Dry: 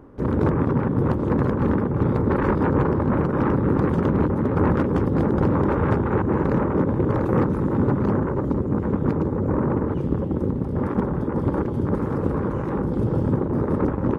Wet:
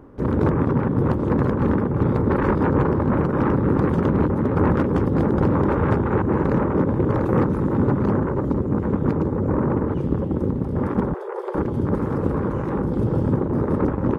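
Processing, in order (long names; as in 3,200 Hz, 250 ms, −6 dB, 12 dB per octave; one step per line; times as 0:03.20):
0:11.14–0:11.55: Chebyshev high-pass filter 360 Hz, order 10
level +1 dB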